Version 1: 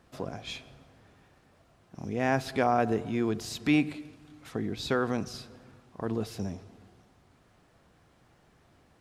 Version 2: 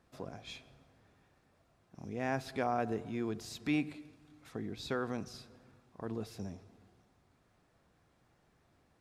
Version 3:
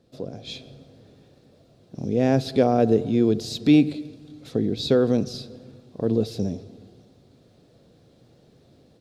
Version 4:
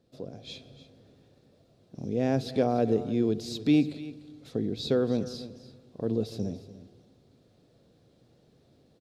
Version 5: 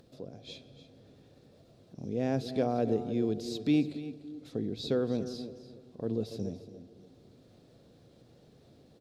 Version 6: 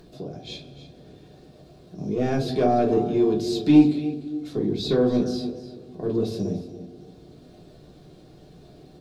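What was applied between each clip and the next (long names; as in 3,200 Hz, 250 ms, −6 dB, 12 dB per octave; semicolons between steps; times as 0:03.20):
notch filter 3,000 Hz, Q 21; level −8 dB
graphic EQ with 10 bands 125 Hz +9 dB, 250 Hz +7 dB, 500 Hz +12 dB, 1,000 Hz −7 dB, 2,000 Hz −5 dB, 4,000 Hz +11 dB; automatic gain control gain up to 7 dB
single-tap delay 295 ms −15.5 dB; level −6.5 dB
upward compression, threshold −46 dBFS; delay with a band-pass on its return 284 ms, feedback 37%, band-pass 400 Hz, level −11.5 dB; level −4 dB
in parallel at −4 dB: soft clipping −25 dBFS, distortion −13 dB; on the sum: convolution reverb RT60 0.25 s, pre-delay 3 ms, DRR −2.5 dB; level +1 dB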